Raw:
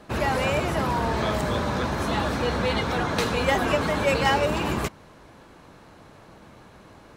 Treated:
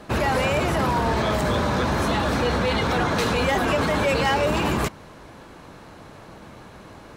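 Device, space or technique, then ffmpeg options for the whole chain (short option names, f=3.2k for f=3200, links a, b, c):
soft clipper into limiter: -af "asoftclip=type=tanh:threshold=-14.5dB,alimiter=limit=-20dB:level=0:latency=1:release=30,volume=5.5dB"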